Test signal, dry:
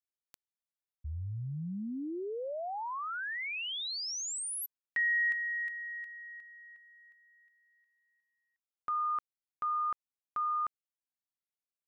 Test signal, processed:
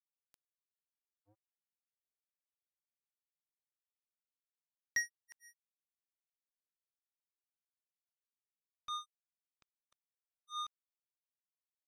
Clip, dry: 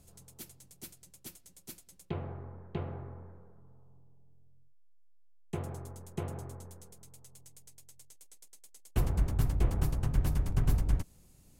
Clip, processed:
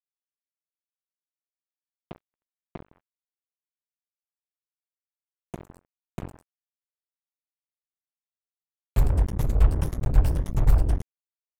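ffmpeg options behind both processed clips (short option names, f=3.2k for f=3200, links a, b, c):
-af "afftfilt=real='re*pow(10,10/40*sin(2*PI*(1.2*log(max(b,1)*sr/1024/100)/log(2)-(1.8)*(pts-256)/sr)))':imag='im*pow(10,10/40*sin(2*PI*(1.2*log(max(b,1)*sr/1024/100)/log(2)-(1.8)*(pts-256)/sr)))':win_size=1024:overlap=0.75,asubboost=boost=2.5:cutoff=180,acrusher=bits=3:mix=0:aa=0.5,volume=-3.5dB"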